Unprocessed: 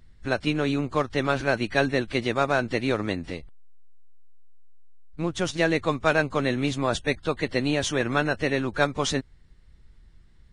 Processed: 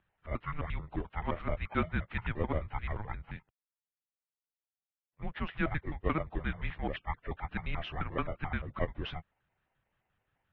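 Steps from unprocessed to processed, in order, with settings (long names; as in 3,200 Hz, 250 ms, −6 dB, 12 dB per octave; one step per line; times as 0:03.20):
pitch shifter gated in a rhythm −9 semitones, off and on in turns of 87 ms
single-sideband voice off tune −320 Hz 220–3,300 Hz
level −7.5 dB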